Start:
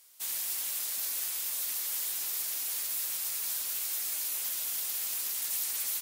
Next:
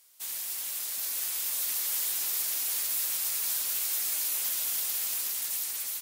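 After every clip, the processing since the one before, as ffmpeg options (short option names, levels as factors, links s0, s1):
-af "dynaudnorm=f=470:g=5:m=1.78,volume=0.841"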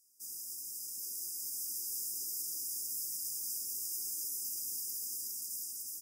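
-af "highshelf=f=11000:g=-7,afftfilt=real='re*(1-between(b*sr/4096,410,4800))':imag='im*(1-between(b*sr/4096,410,4800))':win_size=4096:overlap=0.75,volume=0.596"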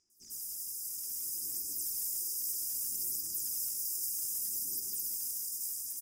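-filter_complex "[0:a]aphaser=in_gain=1:out_gain=1:delay=1.9:decay=0.49:speed=0.63:type=sinusoidal,acrossover=split=5800[s0][s1];[s1]adelay=100[s2];[s0][s2]amix=inputs=2:normalize=0,volume=1.33"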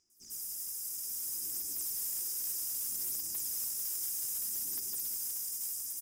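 -af "acrusher=bits=5:mode=log:mix=0:aa=0.000001,aeval=exprs='0.0708*sin(PI/2*1.58*val(0)/0.0708)':c=same,volume=0.447"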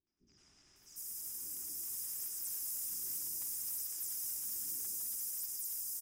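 -filter_complex "[0:a]acrossover=split=530|4000[s0][s1][s2];[s1]adelay=70[s3];[s2]adelay=660[s4];[s0][s3][s4]amix=inputs=3:normalize=0,volume=0.668"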